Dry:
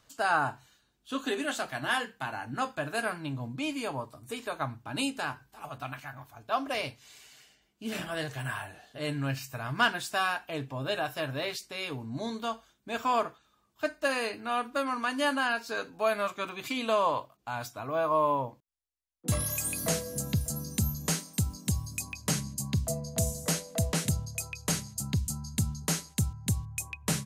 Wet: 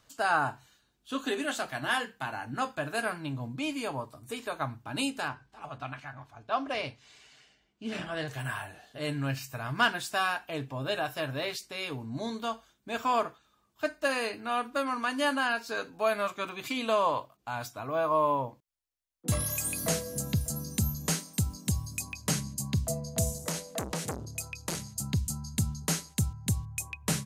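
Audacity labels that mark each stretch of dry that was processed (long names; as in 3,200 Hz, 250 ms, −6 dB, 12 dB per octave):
5.280000	8.280000	high-frequency loss of the air 80 metres
23.380000	24.800000	saturating transformer saturates under 1,200 Hz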